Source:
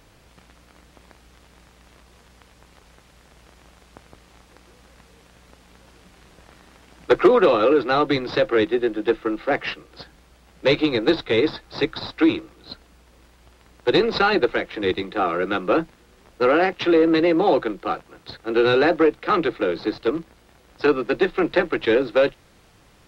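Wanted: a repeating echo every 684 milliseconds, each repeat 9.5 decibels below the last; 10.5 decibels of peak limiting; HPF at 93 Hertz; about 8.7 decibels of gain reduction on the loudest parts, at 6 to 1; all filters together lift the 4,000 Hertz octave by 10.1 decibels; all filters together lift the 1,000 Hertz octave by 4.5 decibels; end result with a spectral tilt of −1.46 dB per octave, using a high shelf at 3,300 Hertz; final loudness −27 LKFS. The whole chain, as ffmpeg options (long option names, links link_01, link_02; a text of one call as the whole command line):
ffmpeg -i in.wav -af "highpass=93,equalizer=frequency=1000:width_type=o:gain=5,highshelf=frequency=3300:gain=8,equalizer=frequency=4000:width_type=o:gain=6,acompressor=threshold=-18dB:ratio=6,alimiter=limit=-16dB:level=0:latency=1,aecho=1:1:684|1368|2052|2736:0.335|0.111|0.0365|0.012" out.wav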